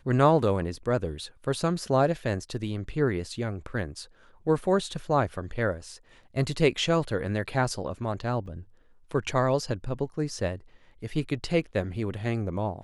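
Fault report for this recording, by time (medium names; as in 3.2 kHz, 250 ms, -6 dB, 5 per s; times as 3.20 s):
8.46 s: dropout 3.2 ms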